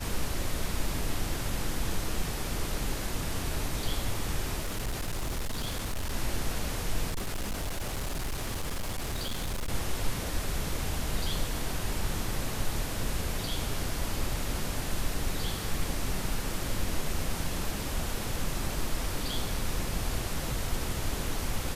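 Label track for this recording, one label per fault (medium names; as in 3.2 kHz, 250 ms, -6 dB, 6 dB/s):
4.600000	6.140000	clipped -28 dBFS
7.090000	9.720000	clipped -28.5 dBFS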